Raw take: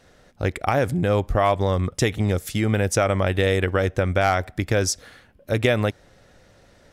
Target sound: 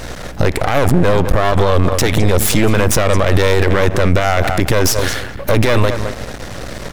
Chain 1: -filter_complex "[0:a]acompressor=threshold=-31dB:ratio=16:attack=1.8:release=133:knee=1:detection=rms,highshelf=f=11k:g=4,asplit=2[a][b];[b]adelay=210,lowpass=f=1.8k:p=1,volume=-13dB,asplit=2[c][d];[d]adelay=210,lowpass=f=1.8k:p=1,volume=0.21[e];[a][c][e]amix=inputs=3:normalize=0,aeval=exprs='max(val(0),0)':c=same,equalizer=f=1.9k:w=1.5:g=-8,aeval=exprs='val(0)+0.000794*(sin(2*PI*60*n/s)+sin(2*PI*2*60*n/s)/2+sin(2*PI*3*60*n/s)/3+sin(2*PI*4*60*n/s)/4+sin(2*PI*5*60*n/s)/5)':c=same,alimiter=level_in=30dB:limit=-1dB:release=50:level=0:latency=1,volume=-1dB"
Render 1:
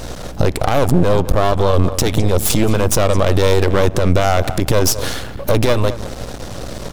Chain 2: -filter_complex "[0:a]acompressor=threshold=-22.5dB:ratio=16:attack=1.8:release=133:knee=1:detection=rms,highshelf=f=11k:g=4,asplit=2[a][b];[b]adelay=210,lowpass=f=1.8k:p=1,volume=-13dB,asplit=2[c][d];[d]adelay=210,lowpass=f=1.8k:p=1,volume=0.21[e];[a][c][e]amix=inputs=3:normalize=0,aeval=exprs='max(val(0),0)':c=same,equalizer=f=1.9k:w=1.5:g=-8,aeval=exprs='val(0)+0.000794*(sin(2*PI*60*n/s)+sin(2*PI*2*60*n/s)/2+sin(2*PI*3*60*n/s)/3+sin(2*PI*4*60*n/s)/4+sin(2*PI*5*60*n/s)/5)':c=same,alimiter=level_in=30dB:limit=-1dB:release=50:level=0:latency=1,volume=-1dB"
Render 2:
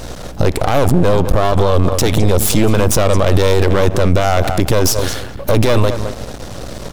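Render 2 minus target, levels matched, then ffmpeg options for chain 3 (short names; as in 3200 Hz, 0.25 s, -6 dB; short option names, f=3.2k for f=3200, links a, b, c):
2000 Hz band -5.0 dB
-filter_complex "[0:a]acompressor=threshold=-22.5dB:ratio=16:attack=1.8:release=133:knee=1:detection=rms,highshelf=f=11k:g=4,asplit=2[a][b];[b]adelay=210,lowpass=f=1.8k:p=1,volume=-13dB,asplit=2[c][d];[d]adelay=210,lowpass=f=1.8k:p=1,volume=0.21[e];[a][c][e]amix=inputs=3:normalize=0,aeval=exprs='max(val(0),0)':c=same,aeval=exprs='val(0)+0.000794*(sin(2*PI*60*n/s)+sin(2*PI*2*60*n/s)/2+sin(2*PI*3*60*n/s)/3+sin(2*PI*4*60*n/s)/4+sin(2*PI*5*60*n/s)/5)':c=same,alimiter=level_in=30dB:limit=-1dB:release=50:level=0:latency=1,volume=-1dB"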